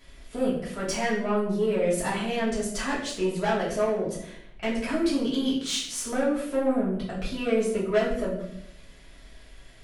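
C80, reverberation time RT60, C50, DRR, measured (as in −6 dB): 8.0 dB, 0.70 s, 4.5 dB, −8.5 dB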